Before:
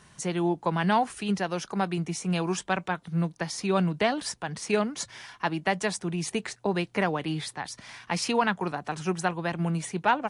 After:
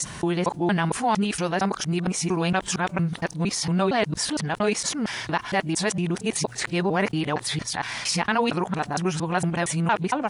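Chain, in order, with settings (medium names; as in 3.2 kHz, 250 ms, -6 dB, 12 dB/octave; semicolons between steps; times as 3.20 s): time reversed locally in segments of 230 ms; level flattener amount 50%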